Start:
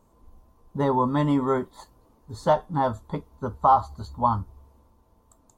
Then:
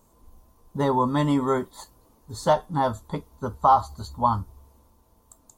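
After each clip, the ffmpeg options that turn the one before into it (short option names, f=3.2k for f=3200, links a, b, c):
-af "highshelf=f=4.1k:g=11"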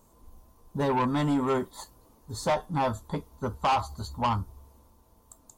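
-af "asoftclip=type=tanh:threshold=-20.5dB"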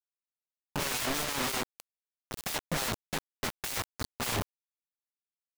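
-af "aeval=exprs='0.0398*(abs(mod(val(0)/0.0398+3,4)-2)-1)':c=same,acrusher=bits=4:mix=0:aa=0.000001"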